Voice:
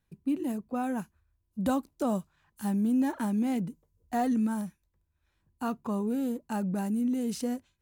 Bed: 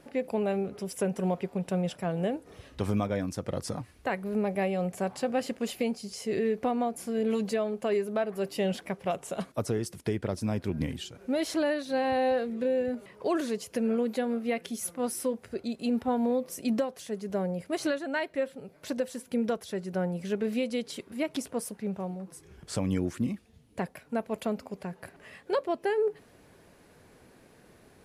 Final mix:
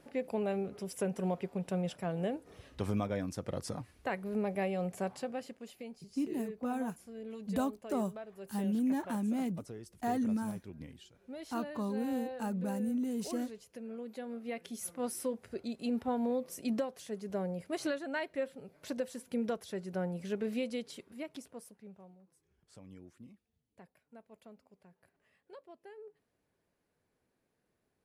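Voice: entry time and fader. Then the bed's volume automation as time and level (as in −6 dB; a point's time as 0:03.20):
5.90 s, −5.0 dB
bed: 0:05.06 −5 dB
0:05.65 −16.5 dB
0:13.88 −16.5 dB
0:14.91 −5.5 dB
0:20.67 −5.5 dB
0:22.35 −24 dB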